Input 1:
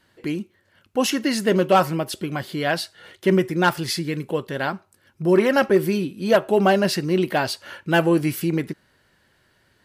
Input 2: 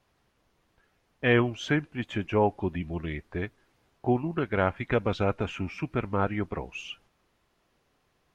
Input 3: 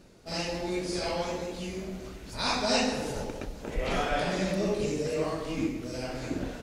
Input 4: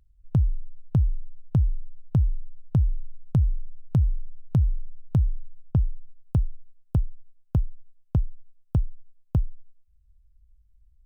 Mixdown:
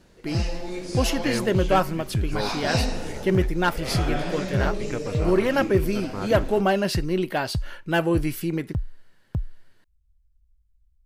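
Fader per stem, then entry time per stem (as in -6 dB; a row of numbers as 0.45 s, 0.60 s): -4.0 dB, -6.5 dB, -1.5 dB, -4.5 dB; 0.00 s, 0.00 s, 0.00 s, 0.00 s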